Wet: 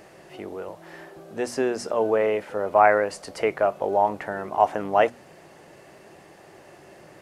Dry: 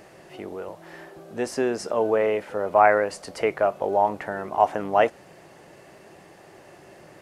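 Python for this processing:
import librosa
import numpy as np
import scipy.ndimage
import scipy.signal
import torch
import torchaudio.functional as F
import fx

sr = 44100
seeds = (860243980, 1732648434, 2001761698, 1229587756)

y = fx.hum_notches(x, sr, base_hz=60, count=4)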